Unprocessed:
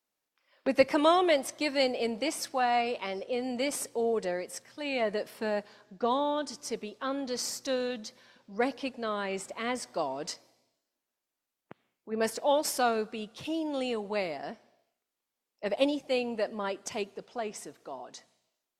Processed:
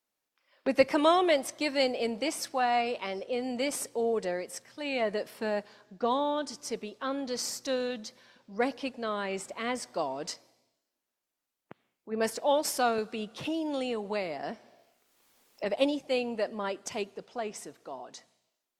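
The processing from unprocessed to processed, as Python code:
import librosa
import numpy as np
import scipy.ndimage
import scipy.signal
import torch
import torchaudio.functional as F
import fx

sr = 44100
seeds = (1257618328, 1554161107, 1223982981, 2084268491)

y = fx.band_squash(x, sr, depth_pct=70, at=(12.98, 15.65))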